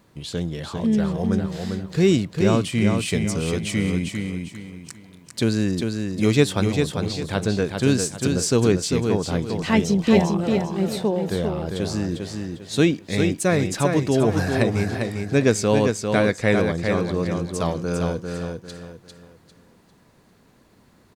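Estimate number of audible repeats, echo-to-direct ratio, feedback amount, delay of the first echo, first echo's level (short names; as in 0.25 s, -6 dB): 4, -4.5 dB, 33%, 0.399 s, -5.0 dB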